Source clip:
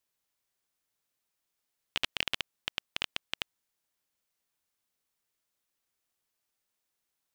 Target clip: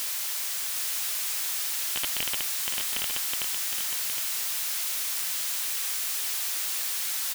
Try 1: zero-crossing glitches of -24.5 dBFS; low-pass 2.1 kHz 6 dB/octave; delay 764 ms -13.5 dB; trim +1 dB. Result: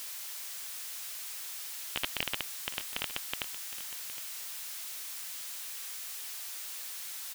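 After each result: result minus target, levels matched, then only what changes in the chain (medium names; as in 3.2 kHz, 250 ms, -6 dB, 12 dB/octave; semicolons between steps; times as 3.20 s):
zero-crossing glitches: distortion -9 dB; echo-to-direct -8 dB
change: zero-crossing glitches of -14 dBFS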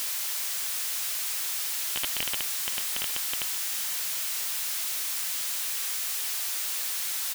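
echo-to-direct -8 dB
change: delay 764 ms -5.5 dB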